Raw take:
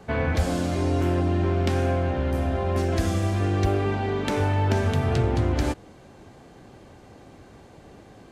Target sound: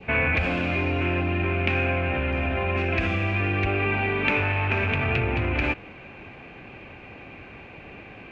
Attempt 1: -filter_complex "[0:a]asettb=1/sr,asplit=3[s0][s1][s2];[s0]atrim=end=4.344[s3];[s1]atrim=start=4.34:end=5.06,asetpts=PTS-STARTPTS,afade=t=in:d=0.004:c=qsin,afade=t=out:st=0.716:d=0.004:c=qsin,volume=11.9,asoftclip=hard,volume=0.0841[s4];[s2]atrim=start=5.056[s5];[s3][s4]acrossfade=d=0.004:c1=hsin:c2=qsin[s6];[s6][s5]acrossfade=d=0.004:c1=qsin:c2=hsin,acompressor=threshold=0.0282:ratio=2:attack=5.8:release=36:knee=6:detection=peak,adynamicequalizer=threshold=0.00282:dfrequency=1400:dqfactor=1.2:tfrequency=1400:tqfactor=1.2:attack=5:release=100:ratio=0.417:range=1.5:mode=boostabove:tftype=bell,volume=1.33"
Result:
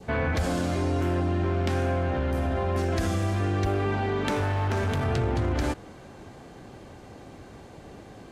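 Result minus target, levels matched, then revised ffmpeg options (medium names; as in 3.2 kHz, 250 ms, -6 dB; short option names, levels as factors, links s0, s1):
2 kHz band -7.5 dB
-filter_complex "[0:a]asettb=1/sr,asplit=3[s0][s1][s2];[s0]atrim=end=4.344[s3];[s1]atrim=start=4.34:end=5.06,asetpts=PTS-STARTPTS,afade=t=in:d=0.004:c=qsin,afade=t=out:st=0.716:d=0.004:c=qsin,volume=11.9,asoftclip=hard,volume=0.0841[s4];[s2]atrim=start=5.056[s5];[s3][s4]acrossfade=d=0.004:c1=hsin:c2=qsin[s6];[s6][s5]acrossfade=d=0.004:c1=qsin:c2=hsin,acompressor=threshold=0.0282:ratio=2:attack=5.8:release=36:knee=6:detection=peak,lowpass=f=2500:t=q:w=13,adynamicequalizer=threshold=0.00282:dfrequency=1400:dqfactor=1.2:tfrequency=1400:tqfactor=1.2:attack=5:release=100:ratio=0.417:range=1.5:mode=boostabove:tftype=bell,volume=1.33"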